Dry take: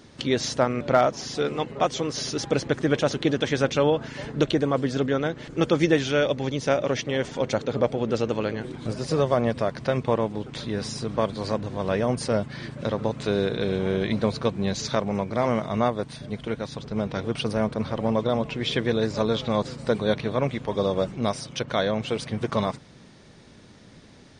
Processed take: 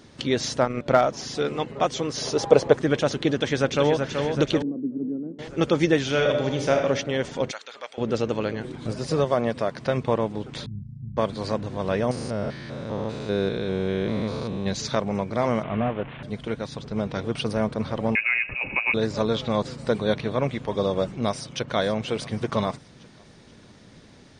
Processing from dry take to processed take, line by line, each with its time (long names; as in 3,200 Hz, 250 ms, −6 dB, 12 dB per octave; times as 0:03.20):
0:00.63–0:01.09: transient designer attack +2 dB, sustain −10 dB
0:02.22–0:02.77: flat-topped bell 680 Hz +10 dB
0:03.35–0:04.02: delay throw 380 ms, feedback 60%, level −5.5 dB
0:04.62–0:05.39: flat-topped band-pass 250 Hz, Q 1.8
0:06.06–0:06.76: thrown reverb, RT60 1 s, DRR 2.5 dB
0:07.51–0:07.98: high-pass filter 1,500 Hz
0:09.24–0:09.86: low-shelf EQ 92 Hz −11.5 dB
0:10.66–0:11.17: inverse Chebyshev low-pass filter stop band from 560 Hz, stop band 60 dB
0:12.11–0:14.66: spectrum averaged block by block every 200 ms
0:15.63–0:16.23: linear delta modulator 16 kbit/s, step −32.5 dBFS
0:18.15–0:18.94: voice inversion scrambler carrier 2,700 Hz
0:21.27–0:21.74: delay throw 480 ms, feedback 50%, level −13.5 dB